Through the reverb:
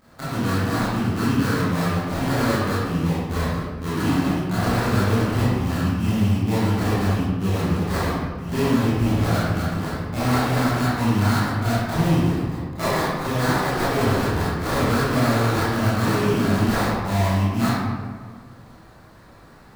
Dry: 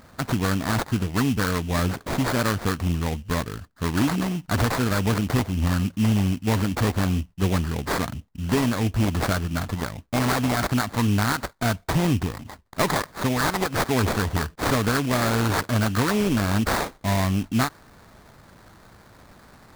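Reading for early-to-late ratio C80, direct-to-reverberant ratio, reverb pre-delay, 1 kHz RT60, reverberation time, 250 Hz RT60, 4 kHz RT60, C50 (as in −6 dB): −0.5 dB, −11.5 dB, 21 ms, 1.6 s, 1.7 s, 2.0 s, 0.90 s, −4.0 dB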